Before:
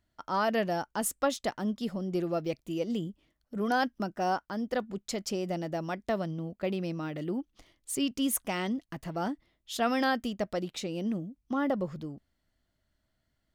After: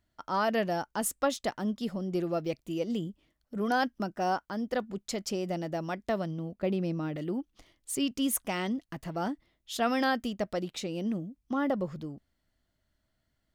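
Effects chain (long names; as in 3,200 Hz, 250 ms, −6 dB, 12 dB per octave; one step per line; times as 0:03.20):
0:06.54–0:07.16: tilt shelving filter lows +3.5 dB, about 750 Hz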